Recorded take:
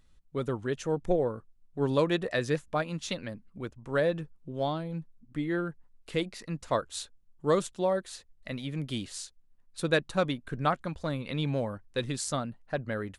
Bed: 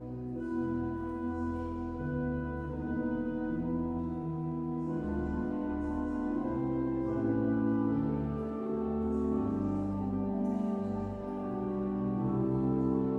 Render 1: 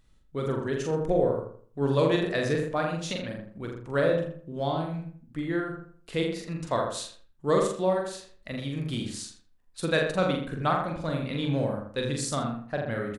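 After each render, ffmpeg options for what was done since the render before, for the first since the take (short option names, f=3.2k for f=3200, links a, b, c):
-filter_complex "[0:a]asplit=2[a][b];[b]adelay=43,volume=-3.5dB[c];[a][c]amix=inputs=2:normalize=0,asplit=2[d][e];[e]adelay=82,lowpass=f=1.9k:p=1,volume=-4dB,asplit=2[f][g];[g]adelay=82,lowpass=f=1.9k:p=1,volume=0.36,asplit=2[h][i];[i]adelay=82,lowpass=f=1.9k:p=1,volume=0.36,asplit=2[j][k];[k]adelay=82,lowpass=f=1.9k:p=1,volume=0.36,asplit=2[l][m];[m]adelay=82,lowpass=f=1.9k:p=1,volume=0.36[n];[f][h][j][l][n]amix=inputs=5:normalize=0[o];[d][o]amix=inputs=2:normalize=0"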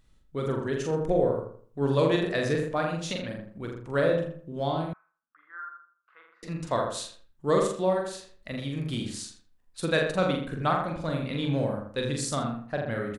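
-filter_complex "[0:a]asettb=1/sr,asplit=3[a][b][c];[a]atrim=end=4.934[d];[b]atrim=start=4.93:end=6.43,asetpts=PTS-STARTPTS,afade=t=in:d=0.004:c=qsin,afade=t=out:st=1.496:d=0.004:c=qsin,asuperpass=centerf=1300:order=4:qfactor=3[e];[c]atrim=start=6.426[f];[d][e]acrossfade=d=0.004:c1=hsin:c2=qsin[g];[g][f]acrossfade=d=0.004:c1=qsin:c2=hsin"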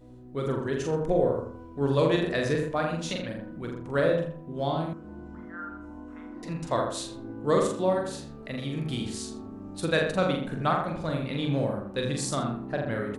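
-filter_complex "[1:a]volume=-9dB[a];[0:a][a]amix=inputs=2:normalize=0"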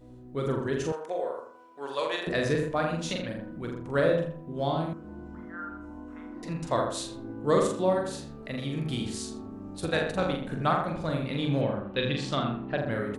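-filter_complex "[0:a]asettb=1/sr,asplit=3[a][b][c];[a]atrim=end=0.924[d];[b]atrim=start=0.92:end=2.27,asetpts=PTS-STARTPTS,afade=t=in:d=0.004:c=qsin,afade=t=out:st=1.346:d=0.004:c=qsin,highpass=740[e];[c]atrim=start=2.266[f];[d][e]acrossfade=d=0.004:c1=hsin:c2=qsin[g];[g][f]acrossfade=d=0.004:c1=qsin:c2=hsin,asplit=3[h][i][j];[h]afade=t=out:st=9.76:d=0.02[k];[i]tremolo=f=250:d=0.621,afade=t=in:st=9.76:d=0.02,afade=t=out:st=10.48:d=0.02[l];[j]afade=t=in:st=10.48:d=0.02[m];[k][l][m]amix=inputs=3:normalize=0,asettb=1/sr,asplit=3[n][o][p];[n]atrim=end=11.614[q];[o]atrim=start=11.61:end=12.78,asetpts=PTS-STARTPTS,afade=t=in:d=0.004:c=qsin,afade=t=out:st=1.166:d=0.004:c=qsin,lowpass=f=3.1k:t=q:w=2.6[r];[p]atrim=start=12.776[s];[q][r]acrossfade=d=0.004:c1=hsin:c2=qsin[t];[t][s]acrossfade=d=0.004:c1=qsin:c2=hsin"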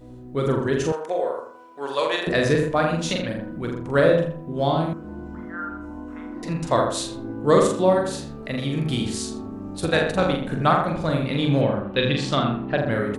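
-af "volume=7dB"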